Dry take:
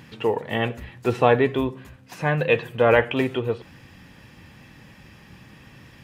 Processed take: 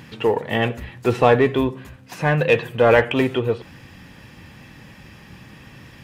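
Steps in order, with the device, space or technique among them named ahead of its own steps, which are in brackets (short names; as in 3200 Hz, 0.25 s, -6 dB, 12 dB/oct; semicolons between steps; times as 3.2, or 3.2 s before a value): parallel distortion (in parallel at -7 dB: hard clip -18.5 dBFS, distortion -7 dB); on the sum: gain +1 dB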